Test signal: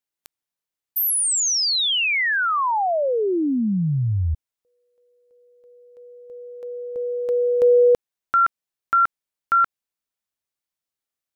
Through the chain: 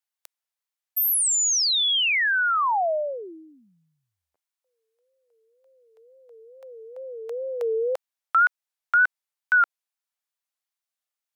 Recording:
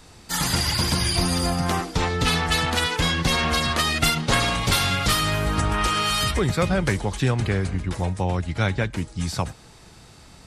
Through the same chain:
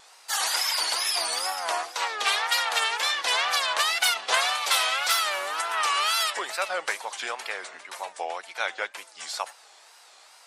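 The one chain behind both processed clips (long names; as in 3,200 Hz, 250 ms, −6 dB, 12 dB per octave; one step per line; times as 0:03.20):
high-pass filter 630 Hz 24 dB per octave
tape wow and flutter 2.1 Hz 150 cents
level −1 dB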